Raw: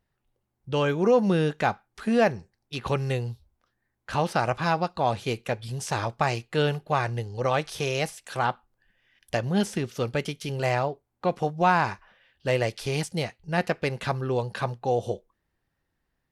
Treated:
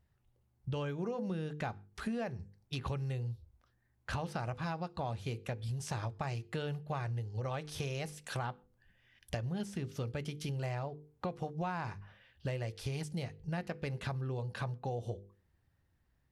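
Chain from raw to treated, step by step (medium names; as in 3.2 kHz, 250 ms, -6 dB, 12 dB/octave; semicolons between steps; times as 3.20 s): peaking EQ 84 Hz +13 dB 1.8 oct; hum notches 50/100/150/200/250/300/350/400/450/500 Hz; compression 6:1, threshold -33 dBFS, peak gain reduction 17 dB; reverberation RT60 0.20 s, pre-delay 116 ms, DRR 36.5 dB; trim -2.5 dB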